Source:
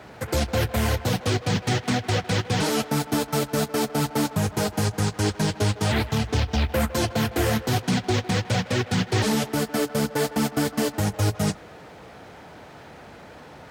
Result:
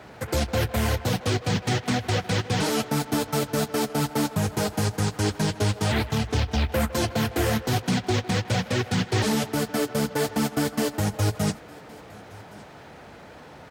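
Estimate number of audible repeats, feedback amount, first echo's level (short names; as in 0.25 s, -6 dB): 1, no steady repeat, -23.5 dB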